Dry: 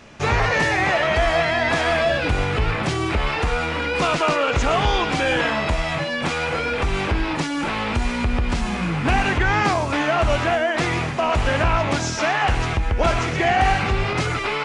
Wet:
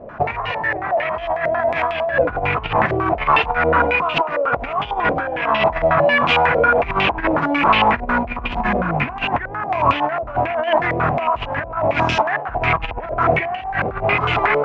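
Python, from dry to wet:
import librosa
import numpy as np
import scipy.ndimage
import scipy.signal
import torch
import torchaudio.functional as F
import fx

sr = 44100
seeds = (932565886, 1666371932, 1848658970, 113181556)

y = fx.rattle_buzz(x, sr, strikes_db=-30.0, level_db=-24.0)
y = fx.over_compress(y, sr, threshold_db=-24.0, ratio=-0.5)
y = fx.small_body(y, sr, hz=(700.0, 1000.0), ring_ms=25, db=8)
y = fx.filter_held_lowpass(y, sr, hz=11.0, low_hz=550.0, high_hz=2900.0)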